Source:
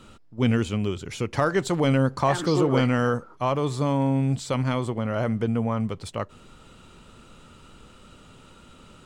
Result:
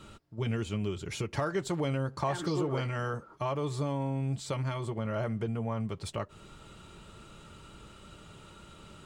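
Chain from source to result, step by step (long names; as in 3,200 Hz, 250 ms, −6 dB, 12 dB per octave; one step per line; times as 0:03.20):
downward compressor 2 to 1, threshold −33 dBFS, peak gain reduction 9.5 dB
notch comb filter 250 Hz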